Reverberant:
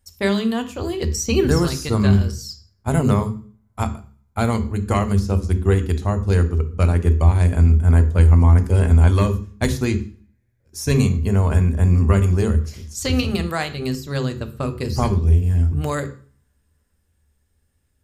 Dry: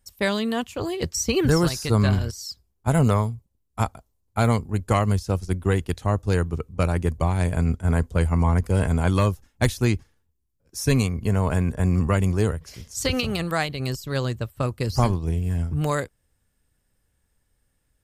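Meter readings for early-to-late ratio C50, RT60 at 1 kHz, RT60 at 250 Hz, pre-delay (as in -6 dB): 14.0 dB, 0.45 s, 0.50 s, 3 ms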